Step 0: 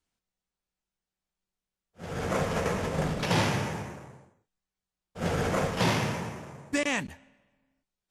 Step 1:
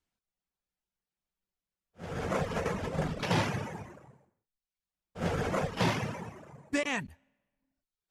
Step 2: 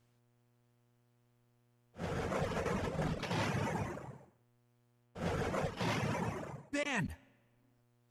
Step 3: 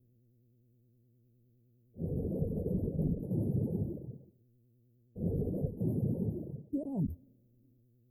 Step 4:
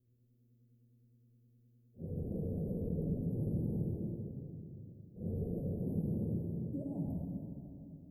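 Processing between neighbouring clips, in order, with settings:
high shelf 5200 Hz -5.5 dB; reverb removal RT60 0.78 s; gain -1.5 dB
reverse; compressor 8:1, threshold -40 dBFS, peak gain reduction 16.5 dB; reverse; buzz 120 Hz, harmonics 28, -80 dBFS -7 dB/oct; gain +7 dB
spectral gain 6.81–7.05, 600–1400 Hz +11 dB; vibrato 9.7 Hz 98 cents; inverse Chebyshev band-stop 1200–6200 Hz, stop band 60 dB; gain +5.5 dB
reverb RT60 2.8 s, pre-delay 38 ms, DRR -2 dB; gain -8 dB

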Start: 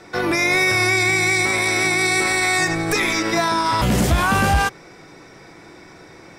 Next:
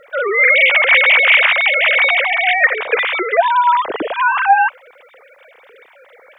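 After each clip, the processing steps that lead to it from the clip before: sine-wave speech; requantised 12-bit, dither none; dynamic EQ 930 Hz, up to +4 dB, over -29 dBFS, Q 0.71; gain +3 dB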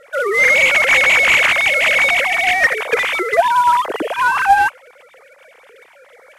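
CVSD 64 kbps

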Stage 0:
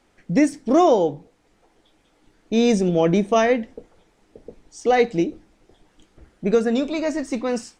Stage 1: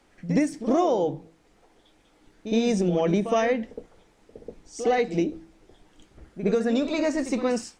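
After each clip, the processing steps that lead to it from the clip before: de-hum 162.9 Hz, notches 2; compressor 6:1, threshold -19 dBFS, peak gain reduction 8 dB; reverse echo 64 ms -11 dB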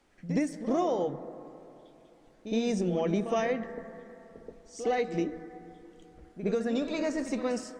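on a send at -13.5 dB: resonant high shelf 2200 Hz -8.5 dB, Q 3 + reverb RT60 3.0 s, pre-delay 85 ms; on the sum: gain -6 dB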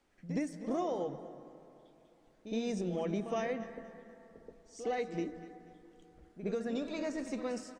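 feedback echo 0.241 s, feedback 36%, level -16.5 dB; gain -6.5 dB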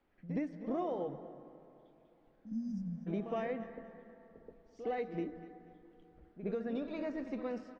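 spectral repair 2.39–3.05, 280–4600 Hz before; air absorption 300 m; gain -1 dB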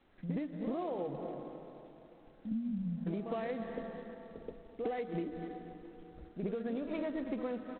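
Wiener smoothing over 9 samples; compressor 16:1, threshold -42 dBFS, peak gain reduction 12 dB; gain +9 dB; G.726 24 kbps 8000 Hz

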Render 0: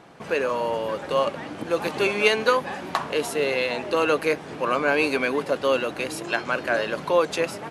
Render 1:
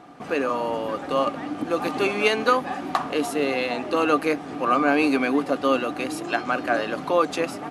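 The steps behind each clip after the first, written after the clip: small resonant body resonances 280/740/1200 Hz, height 12 dB, ringing for 55 ms; gain -2 dB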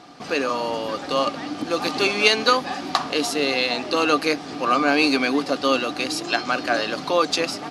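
bell 4800 Hz +15 dB 1.2 oct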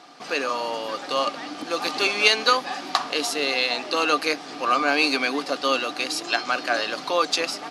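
HPF 560 Hz 6 dB/oct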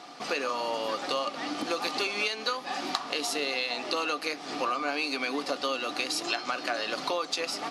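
notch 1600 Hz, Q 19; compressor 10:1, threshold -28 dBFS, peak gain reduction 16.5 dB; on a send at -15 dB: reverb RT60 0.40 s, pre-delay 7 ms; on the sum: gain +1.5 dB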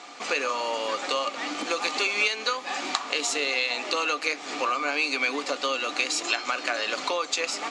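speaker cabinet 290–8500 Hz, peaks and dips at 350 Hz -3 dB, 710 Hz -4 dB, 2300 Hz +5 dB, 5000 Hz -4 dB, 7200 Hz +9 dB; gain +3.5 dB

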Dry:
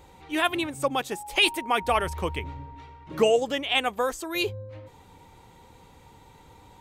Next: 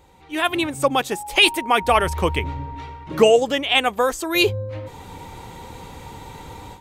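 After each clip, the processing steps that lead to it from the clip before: AGC gain up to 16 dB; gain -1.5 dB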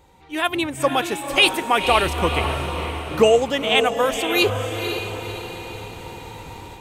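diffused feedback echo 0.511 s, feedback 50%, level -7 dB; gain -1 dB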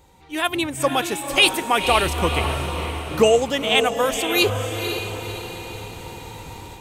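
tone controls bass +2 dB, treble +5 dB; gain -1 dB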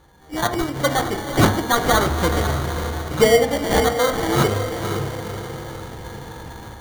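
sample-and-hold 17×; on a send at -7.5 dB: reverb RT60 0.60 s, pre-delay 3 ms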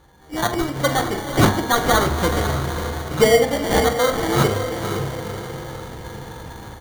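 doubler 44 ms -12 dB

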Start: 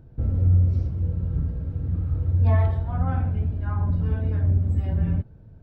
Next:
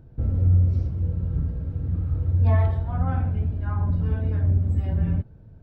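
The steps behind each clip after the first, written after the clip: nothing audible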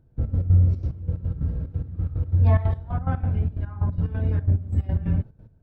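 step gate "..x.x.xxx.x" 181 bpm -12 dB; gain +1.5 dB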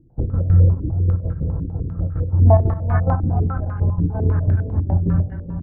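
echo 0.425 s -8.5 dB; reverb RT60 0.90 s, pre-delay 6 ms, DRR 11.5 dB; stepped low-pass 10 Hz 310–1600 Hz; gain +3 dB

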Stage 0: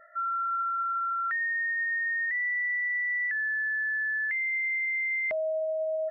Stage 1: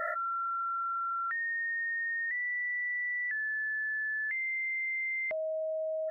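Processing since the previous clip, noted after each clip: fast leveller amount 100%; gain -5 dB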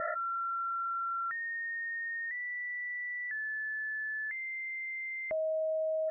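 LPF 1700 Hz 12 dB/oct; low shelf 350 Hz +7.5 dB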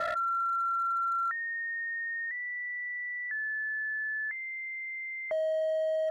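three-band isolator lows -14 dB, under 560 Hz, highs -21 dB, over 2000 Hz; overloaded stage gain 33.5 dB; gain +6.5 dB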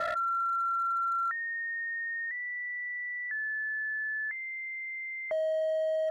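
nothing audible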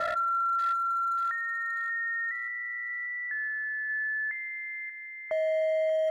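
thin delay 0.584 s, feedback 41%, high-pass 2500 Hz, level -3 dB; on a send at -18 dB: reverb RT60 1.9 s, pre-delay 7 ms; on the sum: gain +1.5 dB

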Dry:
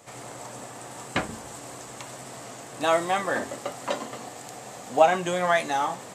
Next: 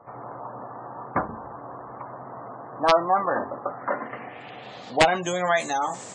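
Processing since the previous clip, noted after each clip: low-pass sweep 1100 Hz -> 7300 Hz, 3.6–5.44; wrapped overs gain 8 dB; spectral gate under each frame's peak -25 dB strong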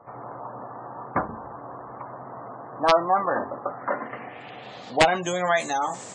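nothing audible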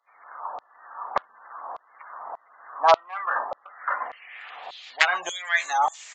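in parallel at -12 dB: soft clip -16.5 dBFS, distortion -12 dB; on the sum: LFO high-pass saw down 1.7 Hz 700–3900 Hz; downsampling 16000 Hz; gain -3 dB

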